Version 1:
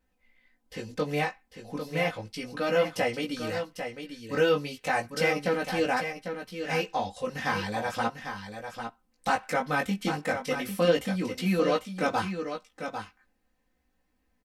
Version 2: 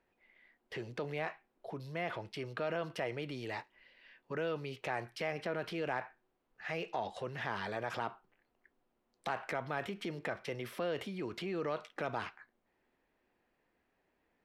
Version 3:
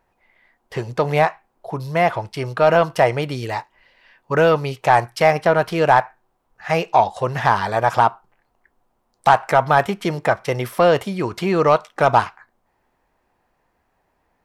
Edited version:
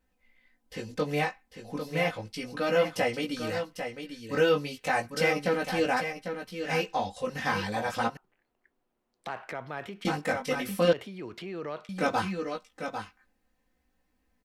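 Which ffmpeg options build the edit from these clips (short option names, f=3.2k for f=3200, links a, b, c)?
-filter_complex "[1:a]asplit=2[a][b];[0:a]asplit=3[c][d][e];[c]atrim=end=8.172[f];[a]atrim=start=8.168:end=10.052[g];[d]atrim=start=10.048:end=10.932[h];[b]atrim=start=10.928:end=11.892[i];[e]atrim=start=11.888[j];[f][g]acrossfade=d=0.004:c1=hsin:c2=hsin[k];[k][h]acrossfade=d=0.004:c1=hsin:c2=hsin[l];[l][i]acrossfade=d=0.004:c1=hsin:c2=hsin[m];[m][j]acrossfade=d=0.004:c1=hsin:c2=hsin"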